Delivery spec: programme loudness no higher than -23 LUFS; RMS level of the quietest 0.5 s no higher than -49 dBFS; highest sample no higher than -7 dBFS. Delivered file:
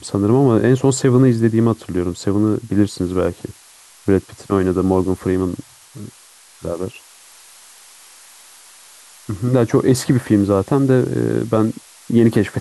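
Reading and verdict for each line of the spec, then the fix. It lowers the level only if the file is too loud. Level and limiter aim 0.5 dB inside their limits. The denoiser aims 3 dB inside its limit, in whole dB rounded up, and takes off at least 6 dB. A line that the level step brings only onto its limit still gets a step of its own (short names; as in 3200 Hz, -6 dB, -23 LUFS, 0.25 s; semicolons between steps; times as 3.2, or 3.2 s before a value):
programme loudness -17.0 LUFS: fail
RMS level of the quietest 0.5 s -46 dBFS: fail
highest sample -3.0 dBFS: fail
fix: gain -6.5 dB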